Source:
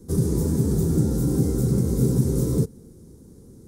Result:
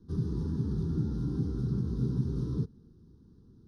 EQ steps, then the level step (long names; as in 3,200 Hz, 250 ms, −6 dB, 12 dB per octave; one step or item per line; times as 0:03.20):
low-pass filter 7,100 Hz 12 dB per octave
high-frequency loss of the air 70 metres
phaser with its sweep stopped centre 2,200 Hz, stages 6
−8.5 dB